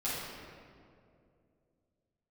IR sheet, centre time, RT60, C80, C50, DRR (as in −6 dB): 129 ms, 2.5 s, 0.0 dB, −2.5 dB, −11.5 dB